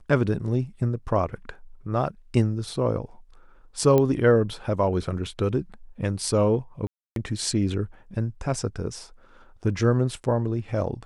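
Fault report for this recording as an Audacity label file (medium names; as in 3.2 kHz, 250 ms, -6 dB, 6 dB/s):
3.980000	3.980000	pop -10 dBFS
6.870000	7.160000	dropout 292 ms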